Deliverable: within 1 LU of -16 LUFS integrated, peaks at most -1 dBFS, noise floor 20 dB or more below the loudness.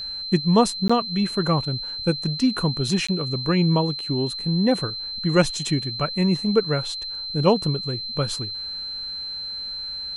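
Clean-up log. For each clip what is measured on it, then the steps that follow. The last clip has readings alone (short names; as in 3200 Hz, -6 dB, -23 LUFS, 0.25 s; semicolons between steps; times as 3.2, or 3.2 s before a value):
dropouts 2; longest dropout 15 ms; steady tone 4100 Hz; tone level -29 dBFS; loudness -23.0 LUFS; peak -4.5 dBFS; loudness target -16.0 LUFS
-> interpolate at 0.88/3.07, 15 ms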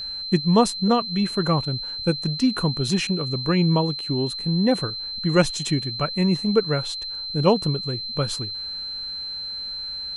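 dropouts 0; steady tone 4100 Hz; tone level -29 dBFS
-> notch 4100 Hz, Q 30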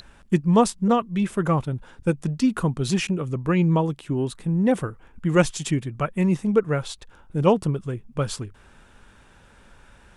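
steady tone none; loudness -23.5 LUFS; peak -5.0 dBFS; loudness target -16.0 LUFS
-> gain +7.5 dB; limiter -1 dBFS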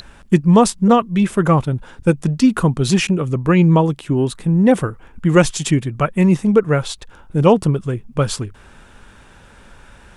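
loudness -16.5 LUFS; peak -1.0 dBFS; noise floor -45 dBFS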